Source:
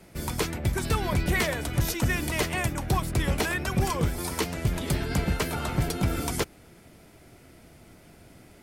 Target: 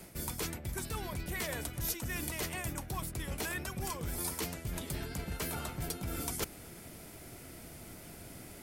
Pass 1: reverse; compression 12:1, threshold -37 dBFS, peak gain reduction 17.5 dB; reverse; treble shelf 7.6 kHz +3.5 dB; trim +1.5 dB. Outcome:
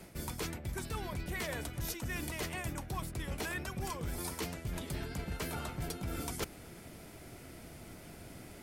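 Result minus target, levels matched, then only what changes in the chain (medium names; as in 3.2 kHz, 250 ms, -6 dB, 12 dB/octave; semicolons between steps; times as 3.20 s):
8 kHz band -3.0 dB
change: treble shelf 7.6 kHz +12 dB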